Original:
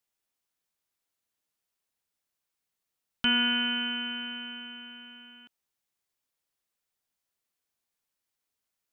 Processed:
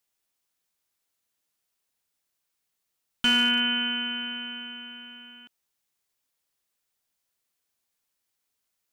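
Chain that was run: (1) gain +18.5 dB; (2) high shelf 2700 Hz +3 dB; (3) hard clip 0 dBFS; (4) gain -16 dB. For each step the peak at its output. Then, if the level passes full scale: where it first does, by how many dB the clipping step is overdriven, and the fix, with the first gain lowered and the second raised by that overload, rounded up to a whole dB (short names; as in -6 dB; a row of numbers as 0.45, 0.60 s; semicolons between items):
+5.0, +6.0, 0.0, -16.0 dBFS; step 1, 6.0 dB; step 1 +12.5 dB, step 4 -10 dB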